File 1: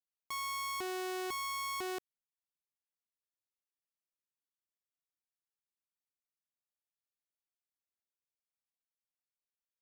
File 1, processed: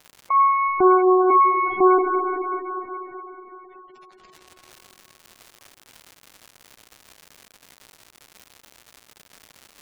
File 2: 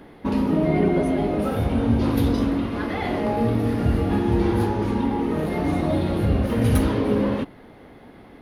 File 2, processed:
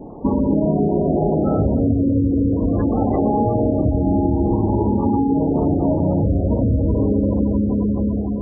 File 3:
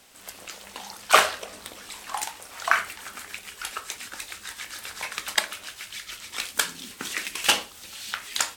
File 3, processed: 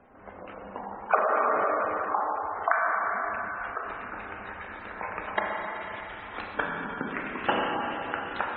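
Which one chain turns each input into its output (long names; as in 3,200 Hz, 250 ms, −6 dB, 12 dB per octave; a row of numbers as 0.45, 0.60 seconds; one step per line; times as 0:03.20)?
low-pass filter 1,100 Hz 12 dB per octave
four-comb reverb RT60 4 s, combs from 29 ms, DRR −1 dB
downward compressor 8 to 1, threshold −24 dBFS
surface crackle 230 per second −56 dBFS
gate on every frequency bin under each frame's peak −20 dB strong
normalise the peak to −6 dBFS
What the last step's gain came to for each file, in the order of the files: +24.0, +10.0, +5.0 decibels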